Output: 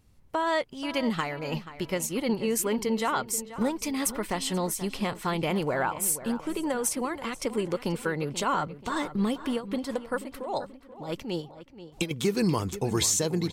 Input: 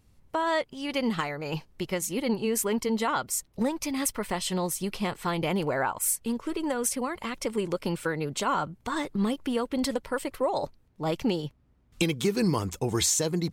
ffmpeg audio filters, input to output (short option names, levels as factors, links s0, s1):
-filter_complex "[0:a]asettb=1/sr,asplit=3[s0][s1][s2];[s0]atrim=end=9.534[s3];[s1]atrim=start=9.53:end=12.11,asetpts=PTS-STARTPTS,afade=t=in:d=0.004:c=qsin,afade=t=out:st=2.576:d=0.004:c=qsin,tremolo=f=4.9:d=0.77[s4];[s2]atrim=start=12.106[s5];[s3][s4]acrossfade=d=0.004:c1=hsin:c2=qsin[s6];[s6][s5]acrossfade=d=0.004:c1=qsin:c2=hsin,asplit=2[s7][s8];[s8]adelay=483,lowpass=f=3300:p=1,volume=0.211,asplit=2[s9][s10];[s10]adelay=483,lowpass=f=3300:p=1,volume=0.44,asplit=2[s11][s12];[s12]adelay=483,lowpass=f=3300:p=1,volume=0.44,asplit=2[s13][s14];[s14]adelay=483,lowpass=f=3300:p=1,volume=0.44[s15];[s7][s9][s11][s13][s15]amix=inputs=5:normalize=0"